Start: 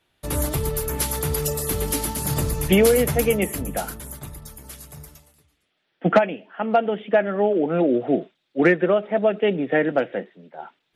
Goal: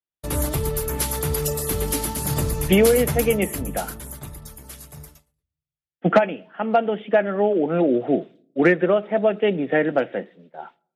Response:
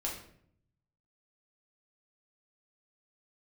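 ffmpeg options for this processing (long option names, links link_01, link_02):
-filter_complex "[0:a]agate=range=-33dB:threshold=-41dB:ratio=3:detection=peak,asplit=2[link_01][link_02];[1:a]atrim=start_sample=2205,lowpass=1900[link_03];[link_02][link_03]afir=irnorm=-1:irlink=0,volume=-24.5dB[link_04];[link_01][link_04]amix=inputs=2:normalize=0"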